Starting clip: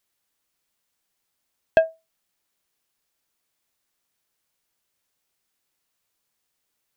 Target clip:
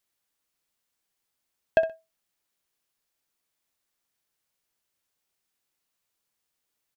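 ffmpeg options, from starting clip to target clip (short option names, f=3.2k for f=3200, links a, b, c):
-af "aecho=1:1:63|126:0.2|0.0419,volume=-4dB"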